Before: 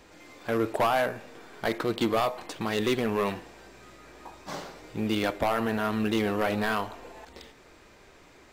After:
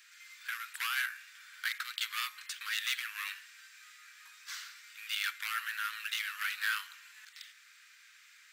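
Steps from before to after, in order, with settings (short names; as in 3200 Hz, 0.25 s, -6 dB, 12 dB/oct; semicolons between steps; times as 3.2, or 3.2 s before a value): steep high-pass 1400 Hz 48 dB/oct; high shelf 9400 Hz +5 dB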